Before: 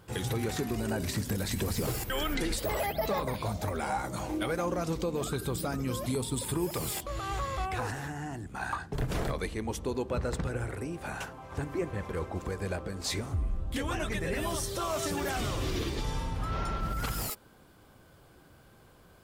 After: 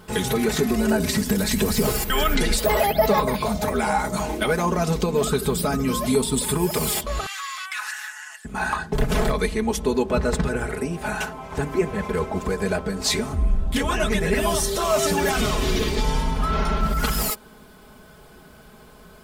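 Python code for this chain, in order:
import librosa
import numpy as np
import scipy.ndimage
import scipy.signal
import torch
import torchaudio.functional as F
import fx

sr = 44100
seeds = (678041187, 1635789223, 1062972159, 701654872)

y = fx.highpass(x, sr, hz=1400.0, slope=24, at=(7.26, 8.45))
y = y + 0.83 * np.pad(y, (int(4.7 * sr / 1000.0), 0))[:len(y)]
y = y * 10.0 ** (8.5 / 20.0)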